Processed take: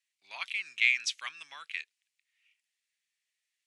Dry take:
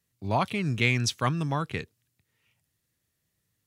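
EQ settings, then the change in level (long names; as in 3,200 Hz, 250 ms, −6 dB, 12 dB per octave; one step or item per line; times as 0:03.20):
high-pass with resonance 2,300 Hz, resonance Q 2.4
low-pass filter 9,500 Hz 24 dB per octave
−5.5 dB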